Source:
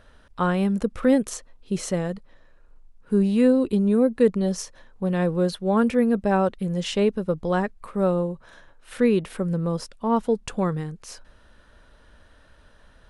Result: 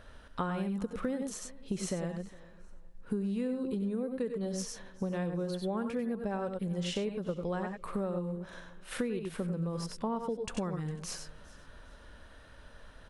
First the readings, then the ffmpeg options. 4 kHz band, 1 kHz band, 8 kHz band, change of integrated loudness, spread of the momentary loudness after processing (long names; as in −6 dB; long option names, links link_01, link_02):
−7.5 dB, −12.0 dB, −6.0 dB, −12.5 dB, 21 LU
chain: -filter_complex "[0:a]asplit=2[link_01][link_02];[link_02]aecho=0:1:68|91|102:0.112|0.316|0.316[link_03];[link_01][link_03]amix=inputs=2:normalize=0,acompressor=threshold=-31dB:ratio=10,asplit=2[link_04][link_05];[link_05]aecho=0:1:405|810:0.0794|0.0238[link_06];[link_04][link_06]amix=inputs=2:normalize=0"